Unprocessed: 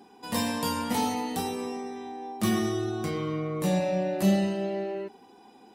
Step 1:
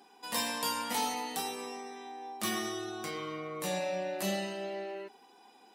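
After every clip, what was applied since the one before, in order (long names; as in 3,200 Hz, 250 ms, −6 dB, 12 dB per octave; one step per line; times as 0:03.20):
high-pass filter 1,000 Hz 6 dB per octave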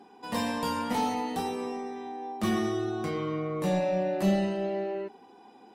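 soft clipping −22 dBFS, distortion −24 dB
spectral tilt −3.5 dB per octave
level +4 dB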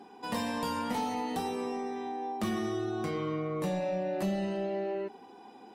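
downward compressor 3 to 1, threshold −33 dBFS, peak gain reduction 9.5 dB
level +2 dB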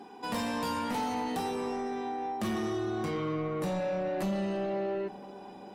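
soft clipping −29.5 dBFS, distortion −15 dB
feedback echo with a low-pass in the loop 443 ms, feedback 71%, level −20 dB
level +3 dB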